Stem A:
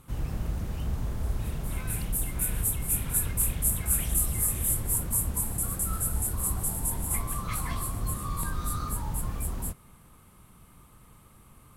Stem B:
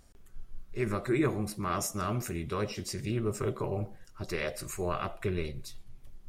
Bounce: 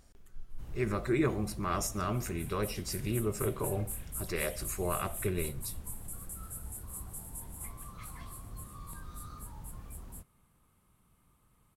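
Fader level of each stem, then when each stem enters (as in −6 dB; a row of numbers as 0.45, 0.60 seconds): −14.0, −1.0 decibels; 0.50, 0.00 seconds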